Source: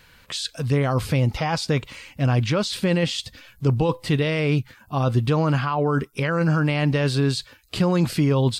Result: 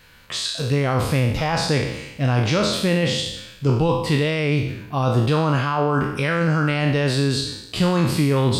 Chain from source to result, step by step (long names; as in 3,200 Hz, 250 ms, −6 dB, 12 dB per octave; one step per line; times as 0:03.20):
peak hold with a decay on every bin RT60 0.89 s